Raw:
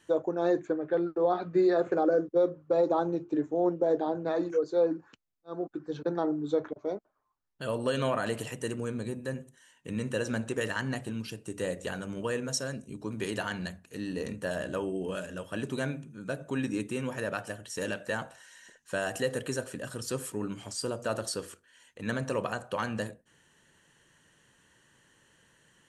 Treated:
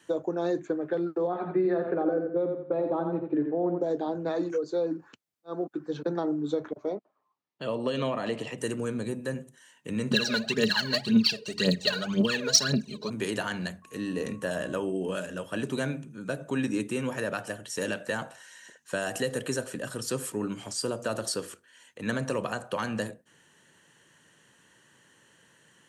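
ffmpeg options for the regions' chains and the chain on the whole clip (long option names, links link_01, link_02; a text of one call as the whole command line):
ffmpeg -i in.wav -filter_complex "[0:a]asettb=1/sr,asplit=3[link_01][link_02][link_03];[link_01]atrim=end=1.274[link_04];[link_02]atrim=start=1.27:end=3.81,asetpts=PTS-STARTPTS,afade=type=in:duration=0.004:curve=qsin,afade=type=out:start_time=2.536:duration=0.004:curve=qsin,lowpass=frequency=2600:width=0.5412,lowpass=frequency=2600:width=1.3066,aecho=1:1:86|172|258:0.447|0.121|0.0326,atrim=end_sample=112014[link_05];[link_03]atrim=start=3.806[link_06];[link_04][link_05]acrossfade=duration=0.004:curve1=hsin:curve2=qsin[link_07];[link_07][link_06]acrossfade=duration=0.004:curve1=qsin:curve2=hsin,asettb=1/sr,asplit=3[link_08][link_09][link_10];[link_08]atrim=end=6.894[link_11];[link_09]atrim=start=6.89:end=8.58,asetpts=PTS-STARTPTS,afade=type=in:duration=0.004:curve=qsin,afade=type=out:start_time=1.686:duration=0.004:curve=qsin,highpass=130,lowpass=4200,equalizer=frequency=1500:width_type=o:width=0.22:gain=-10.5[link_12];[link_10]atrim=start=8.576[link_13];[link_11][link_12]acrossfade=duration=0.004:curve1=hsin:curve2=qsin[link_14];[link_14][link_13]acrossfade=duration=0.004:curve1=qsin:curve2=hsin,asettb=1/sr,asplit=3[link_15][link_16][link_17];[link_15]atrim=end=10.114[link_18];[link_16]atrim=start=10.11:end=13.1,asetpts=PTS-STARTPTS,afade=type=in:duration=0.004:curve=qsin,afade=type=out:start_time=2.986:duration=0.004:curve=qsin,lowpass=frequency=4400:width_type=q:width=7.4,aecho=1:1:4.8:0.78,atrim=end_sample=131859,aphaser=in_gain=1:out_gain=1:delay=2.2:decay=0.76:speed=1.9:type=triangular[link_19];[link_17]atrim=start=13.096[link_20];[link_18][link_19]acrossfade=duration=0.004:curve1=hsin:curve2=qsin[link_21];[link_21][link_20]acrossfade=duration=0.004:curve1=qsin:curve2=hsin,asettb=1/sr,asplit=3[link_22][link_23][link_24];[link_22]atrim=end=13.824[link_25];[link_23]atrim=start=13.82:end=14.83,asetpts=PTS-STARTPTS,afade=type=in:duration=0.004:curve=qsin,afade=type=out:start_time=1.006:duration=0.004:curve=qsin,bandreject=frequency=4400:width=12,aeval=exprs='val(0)+0.00126*sin(2*PI*1100*n/s)':channel_layout=same[link_26];[link_24]atrim=start=14.826[link_27];[link_25][link_26]acrossfade=duration=0.004:curve1=hsin:curve2=qsin[link_28];[link_28][link_27]acrossfade=duration=0.004:curve1=qsin:curve2=hsin,highpass=120,acrossover=split=280|3000[link_29][link_30][link_31];[link_30]acompressor=threshold=-31dB:ratio=6[link_32];[link_29][link_32][link_31]amix=inputs=3:normalize=0,volume=3.5dB" out.wav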